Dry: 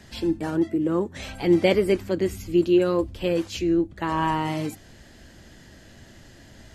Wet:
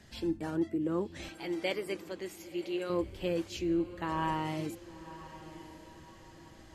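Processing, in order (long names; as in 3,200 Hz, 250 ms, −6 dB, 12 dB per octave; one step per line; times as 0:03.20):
0:01.29–0:02.90: high-pass filter 880 Hz 6 dB per octave
on a send: feedback delay with all-pass diffusion 1,038 ms, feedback 42%, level −15 dB
on the sum: level −8.5 dB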